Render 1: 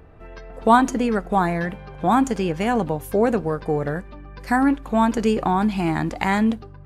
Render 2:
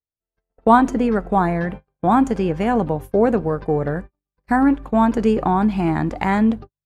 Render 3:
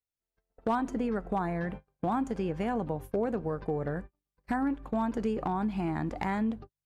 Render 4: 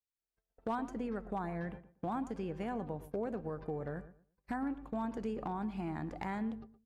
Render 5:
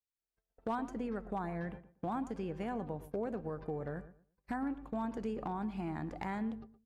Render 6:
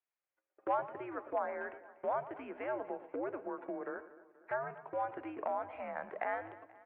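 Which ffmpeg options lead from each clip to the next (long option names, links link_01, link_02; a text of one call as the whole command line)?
ffmpeg -i in.wav -af "agate=range=-56dB:threshold=-32dB:ratio=16:detection=peak,highshelf=frequency=2400:gain=-11,volume=3dB" out.wav
ffmpeg -i in.wav -af "acompressor=threshold=-30dB:ratio=2.5,volume=19dB,asoftclip=hard,volume=-19dB,volume=-2.5dB" out.wav
ffmpeg -i in.wav -filter_complex "[0:a]asplit=2[link_01][link_02];[link_02]adelay=117,lowpass=frequency=1800:poles=1,volume=-14dB,asplit=2[link_03][link_04];[link_04]adelay=117,lowpass=frequency=1800:poles=1,volume=0.23,asplit=2[link_05][link_06];[link_06]adelay=117,lowpass=frequency=1800:poles=1,volume=0.23[link_07];[link_01][link_03][link_05][link_07]amix=inputs=4:normalize=0,volume=-7.5dB" out.wav
ffmpeg -i in.wav -af anull out.wav
ffmpeg -i in.wav -af "highpass=frequency=560:width_type=q:width=0.5412,highpass=frequency=560:width_type=q:width=1.307,lowpass=frequency=2600:width_type=q:width=0.5176,lowpass=frequency=2600:width_type=q:width=0.7071,lowpass=frequency=2600:width_type=q:width=1.932,afreqshift=-120,aecho=1:1:241|482|723|964|1205:0.112|0.0628|0.0352|0.0197|0.011,volume=5.5dB" out.wav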